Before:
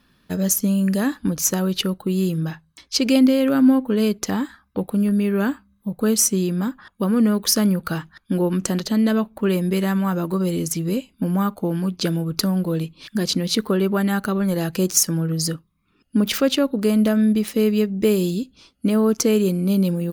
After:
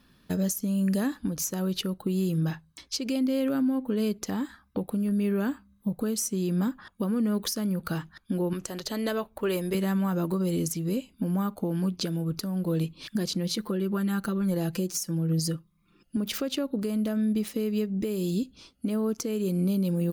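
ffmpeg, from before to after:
-filter_complex "[0:a]asettb=1/sr,asplit=3[s0][s1][s2];[s0]atrim=end=8.534[s3];[s1]atrim=start=8.53:end=9.75,asetpts=PTS-STARTPTS,afade=t=in:d=0.004:c=qsin,afade=t=out:st=1.216:d=0.004:c=qsin,equalizer=f=210:w=1.5:g=-13[s4];[s2]atrim=start=9.746[s5];[s3][s4]acrossfade=d=0.004:c1=hsin:c2=qsin[s6];[s6][s5]acrossfade=d=0.004:c1=qsin:c2=hsin,asettb=1/sr,asplit=3[s7][s8][s9];[s7]atrim=end=13.344[s10];[s8]atrim=start=13.34:end=16.17,asetpts=PTS-STARTPTS,afade=t=in:d=0.004:c=qsin,afade=t=out:st=2.826:d=0.004:c=qsin,aecho=1:1:5.8:0.65,atrim=end_sample=124803[s11];[s9]atrim=start=16.166[s12];[s10][s11]acrossfade=d=0.004:c1=hsin:c2=qsin[s13];[s13][s12]acrossfade=d=0.004:c1=qsin:c2=hsin,equalizer=f=1700:t=o:w=2.4:g=-3,acompressor=threshold=0.0794:ratio=5,alimiter=limit=0.112:level=0:latency=1:release=414"

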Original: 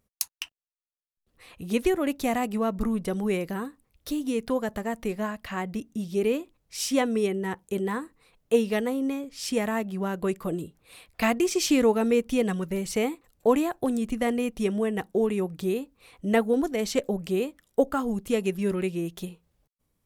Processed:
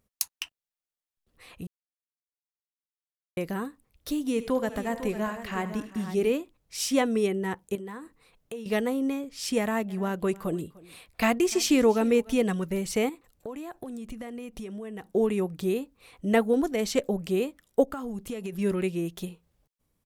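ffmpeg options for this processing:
-filter_complex "[0:a]asettb=1/sr,asplit=3[s0][s1][s2];[s0]atrim=end=4.244[s3];[s1]atrim=start=4.24:end=6.3,asetpts=PTS-STARTPTS,afade=t=in:d=0.004:c=qsin,afade=t=out:st=2.056:d=0.004:c=qsin,aecho=1:1:74|103|392|501:0.188|0.126|0.126|0.266,atrim=end_sample=90846[s4];[s2]atrim=start=6.296[s5];[s3][s4]acrossfade=d=0.004:c1=hsin:c2=qsin[s6];[s6][s5]acrossfade=d=0.004:c1=qsin:c2=hsin,asettb=1/sr,asplit=3[s7][s8][s9];[s7]atrim=end=7.754[s10];[s8]atrim=start=7.75:end=8.66,asetpts=PTS-STARTPTS,afade=t=in:d=0.004:c=qsin,afade=t=out:st=0.906:d=0.004:c=qsin,acompressor=threshold=0.0141:ratio=4:attack=3.2:release=140:knee=1:detection=peak[s11];[s9]atrim=start=8.656[s12];[s10][s11]acrossfade=d=0.004:c1=hsin:c2=qsin[s13];[s13][s12]acrossfade=d=0.004:c1=qsin:c2=hsin,asplit=3[s14][s15][s16];[s14]afade=t=out:st=9.88:d=0.02[s17];[s15]aecho=1:1:299:0.0794,afade=t=in:st=9.88:d=0.02,afade=t=out:st=12.37:d=0.02[s18];[s16]afade=t=in:st=12.37:d=0.02[s19];[s17][s18][s19]amix=inputs=3:normalize=0,asettb=1/sr,asplit=3[s20][s21][s22];[s20]atrim=end=13.094[s23];[s21]atrim=start=13.09:end=15.07,asetpts=PTS-STARTPTS,afade=t=in:d=0.004:c=qsin,afade=t=out:st=1.976:d=0.004:c=qsin,acompressor=threshold=0.0178:ratio=8:attack=3.2:release=140:knee=1:detection=peak[s24];[s22]atrim=start=15.066[s25];[s23][s24]acrossfade=d=0.004:c1=hsin:c2=qsin[s26];[s26][s25]acrossfade=d=0.004:c1=qsin:c2=hsin,asplit=3[s27][s28][s29];[s27]afade=t=out:st=17.84:d=0.02[s30];[s28]acompressor=threshold=0.0316:ratio=12:attack=3.2:release=140:knee=1:detection=peak,afade=t=in:st=17.84:d=0.02,afade=t=out:st=18.52:d=0.02[s31];[s29]afade=t=in:st=18.52:d=0.02[s32];[s30][s31][s32]amix=inputs=3:normalize=0,asplit=3[s33][s34][s35];[s33]atrim=end=1.67,asetpts=PTS-STARTPTS,afade=t=out:st=1.666:d=0.004:c=hsin[s36];[s34]atrim=start=1.67:end=3.37,asetpts=PTS-STARTPTS,volume=0[s37];[s35]atrim=start=3.37,asetpts=PTS-STARTPTS,afade=t=in:d=0.004:c=hsin[s38];[s36][s37][s38]concat=n=3:v=0:a=1"

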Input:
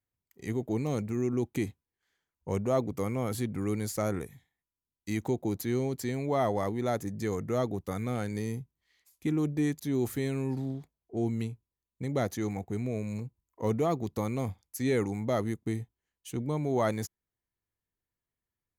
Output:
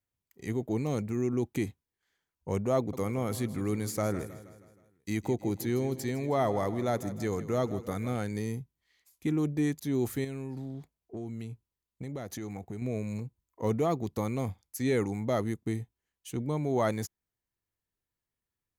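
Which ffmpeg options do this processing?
-filter_complex "[0:a]asettb=1/sr,asplit=3[s0][s1][s2];[s0]atrim=end=2.774[s3];[s1]atrim=start=2.77:end=8.16,asetpts=PTS-STARTPTS,afade=t=in:d=0.004:c=qsin,afade=t=out:st=5.386:d=0.004:c=qsin,aecho=1:1:158|316|474|632|790:0.178|0.0942|0.05|0.0265|0.014,atrim=end_sample=237699[s4];[s2]atrim=start=8.156[s5];[s3][s4]acrossfade=d=0.004:c1=hsin:c2=qsin[s6];[s6][s5]acrossfade=d=0.004:c1=qsin:c2=hsin,asettb=1/sr,asplit=3[s7][s8][s9];[s7]atrim=end=10.244[s10];[s8]atrim=start=10.24:end=12.82,asetpts=PTS-STARTPTS,afade=t=in:d=0.004:c=qsin,afade=t=out:st=2.576:d=0.004:c=qsin,acompressor=threshold=0.02:ratio=6:attack=3.2:release=140:knee=1:detection=peak[s11];[s9]atrim=start=12.816[s12];[s10][s11]acrossfade=d=0.004:c1=hsin:c2=qsin[s13];[s13][s12]acrossfade=d=0.004:c1=qsin:c2=hsin"

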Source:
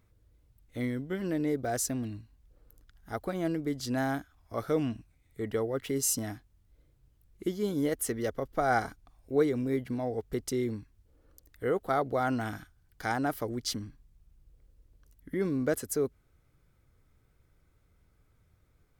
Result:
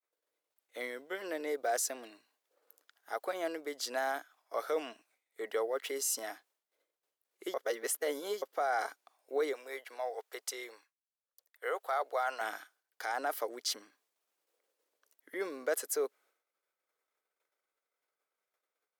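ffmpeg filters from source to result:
-filter_complex "[0:a]asettb=1/sr,asplit=3[s0][s1][s2];[s0]atrim=end=9.534[s3];[s1]atrim=start=9.53:end=12.41,asetpts=PTS-STARTPTS,afade=t=in:d=0.004:c=qsin,afade=t=out:st=2.876:d=0.004:c=qsin,highpass=630[s4];[s2]atrim=start=12.406[s5];[s3][s4]acrossfade=d=0.004:c1=hsin:c2=qsin[s6];[s6][s5]acrossfade=d=0.004:c1=qsin:c2=hsin,asplit=3[s7][s8][s9];[s7]atrim=end=7.542[s10];[s8]atrim=start=7.538:end=8.422,asetpts=PTS-STARTPTS,areverse[s11];[s9]atrim=start=8.418[s12];[s10][s11]acrossfade=d=0.004:c1=hsin:c2=hsin[s13];[s13][s12]acrossfade=d=0.004:c1=hsin:c2=hsin,agate=range=0.0224:threshold=0.00158:ratio=3:detection=peak,highpass=f=480:w=0.5412,highpass=f=480:w=1.3066,alimiter=level_in=1.19:limit=0.0631:level=0:latency=1:release=14,volume=0.841,volume=1.26"

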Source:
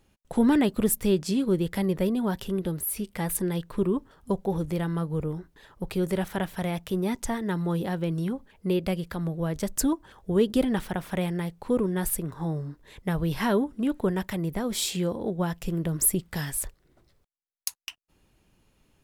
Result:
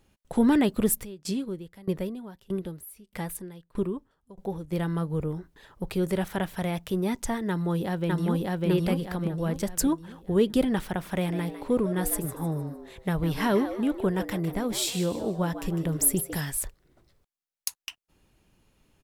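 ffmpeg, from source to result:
-filter_complex "[0:a]asplit=3[s0][s1][s2];[s0]afade=t=out:st=1.03:d=0.02[s3];[s1]aeval=exprs='val(0)*pow(10,-24*if(lt(mod(1.6*n/s,1),2*abs(1.6)/1000),1-mod(1.6*n/s,1)/(2*abs(1.6)/1000),(mod(1.6*n/s,1)-2*abs(1.6)/1000)/(1-2*abs(1.6)/1000))/20)':c=same,afade=t=in:st=1.03:d=0.02,afade=t=out:st=4.71:d=0.02[s4];[s2]afade=t=in:st=4.71:d=0.02[s5];[s3][s4][s5]amix=inputs=3:normalize=0,asplit=2[s6][s7];[s7]afade=t=in:st=7.49:d=0.01,afade=t=out:st=8.67:d=0.01,aecho=0:1:600|1200|1800|2400|3000|3600:1|0.4|0.16|0.064|0.0256|0.01024[s8];[s6][s8]amix=inputs=2:normalize=0,asettb=1/sr,asplit=3[s9][s10][s11];[s9]atrim=end=11.004[s12];[s10]atrim=start=11:end=16.41,asetpts=PTS-STARTPTS,afade=t=in:d=0.004:c=qsin,afade=t=out:st=5.406:d=0.004:c=qsin,asplit=5[s13][s14][s15][s16][s17];[s14]adelay=153,afreqshift=120,volume=0.266[s18];[s15]adelay=306,afreqshift=240,volume=0.0933[s19];[s16]adelay=459,afreqshift=360,volume=0.0327[s20];[s17]adelay=612,afreqshift=480,volume=0.0114[s21];[s13][s18][s19][s20][s21]amix=inputs=5:normalize=0,atrim=end_sample=238581[s22];[s11]atrim=start=16.406[s23];[s12][s22]acrossfade=d=0.004:c1=hsin:c2=qsin[s24];[s24][s23]acrossfade=d=0.004:c1=qsin:c2=hsin"

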